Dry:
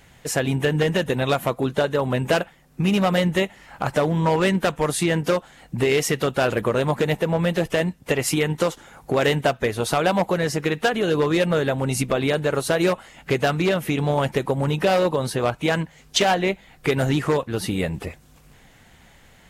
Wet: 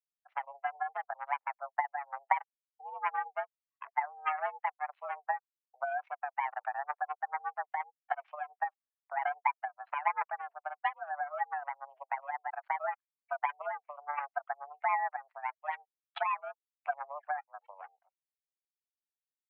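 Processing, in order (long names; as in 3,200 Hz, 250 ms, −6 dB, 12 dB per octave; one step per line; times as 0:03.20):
expanding power law on the bin magnitudes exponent 3
power curve on the samples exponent 3
single-sideband voice off tune +290 Hz 380–2,300 Hz
level +1.5 dB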